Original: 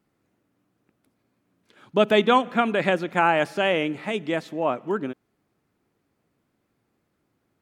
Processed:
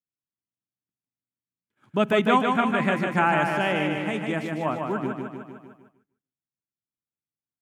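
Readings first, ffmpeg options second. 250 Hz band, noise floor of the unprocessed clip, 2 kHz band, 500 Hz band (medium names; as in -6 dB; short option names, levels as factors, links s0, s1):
+1.5 dB, -74 dBFS, 0.0 dB, -3.5 dB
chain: -af "equalizer=f=125:t=o:w=1:g=5,equalizer=f=500:t=o:w=1:g=-7,equalizer=f=4000:t=o:w=1:g=-8,aecho=1:1:151|302|453|604|755|906|1057|1208:0.596|0.351|0.207|0.122|0.0722|0.0426|0.0251|0.0148,agate=range=0.0224:threshold=0.00501:ratio=3:detection=peak"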